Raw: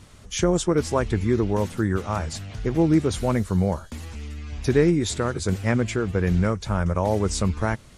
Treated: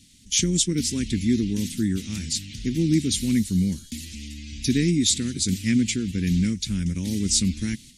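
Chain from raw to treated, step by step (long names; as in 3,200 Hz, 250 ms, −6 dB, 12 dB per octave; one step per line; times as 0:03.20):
noise gate −42 dBFS, range −7 dB
drawn EQ curve 110 Hz 0 dB, 260 Hz +11 dB, 670 Hz −29 dB, 1,200 Hz −23 dB, 2,000 Hz +4 dB, 3,700 Hz +14 dB
level −5 dB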